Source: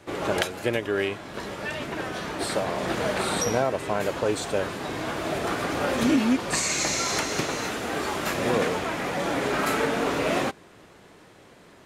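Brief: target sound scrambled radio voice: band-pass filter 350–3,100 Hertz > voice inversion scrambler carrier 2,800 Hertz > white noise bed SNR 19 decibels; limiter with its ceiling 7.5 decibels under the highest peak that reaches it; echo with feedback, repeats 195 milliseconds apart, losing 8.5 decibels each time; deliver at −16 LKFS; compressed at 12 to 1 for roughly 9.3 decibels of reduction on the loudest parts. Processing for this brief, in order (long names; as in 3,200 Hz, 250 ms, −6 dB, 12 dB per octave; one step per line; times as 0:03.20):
downward compressor 12 to 1, threshold −27 dBFS
brickwall limiter −22.5 dBFS
band-pass filter 350–3,100 Hz
repeating echo 195 ms, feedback 38%, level −8.5 dB
voice inversion scrambler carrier 2,800 Hz
white noise bed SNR 19 dB
level +16 dB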